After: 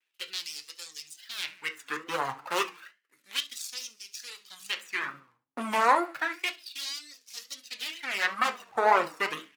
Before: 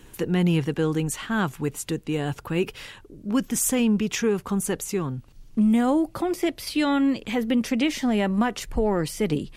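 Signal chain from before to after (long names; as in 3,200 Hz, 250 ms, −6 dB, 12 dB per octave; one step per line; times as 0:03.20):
running median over 41 samples
high-pass filter 47 Hz 6 dB per octave
repeating echo 70 ms, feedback 44%, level −9.5 dB
noise gate −45 dBFS, range −19 dB
reverb reduction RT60 1 s
0:02.48–0:03.51: tilt shelving filter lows −4.5 dB, about 1,300 Hz
on a send at −5.5 dB: convolution reverb RT60 0.25 s, pre-delay 6 ms
on the sum: tape wow and flutter 130 cents
in parallel at −1 dB: brickwall limiter −17.5 dBFS, peak gain reduction 7 dB
on the sum: auto-filter high-pass sine 0.31 Hz 940–5,500 Hz
level +2.5 dB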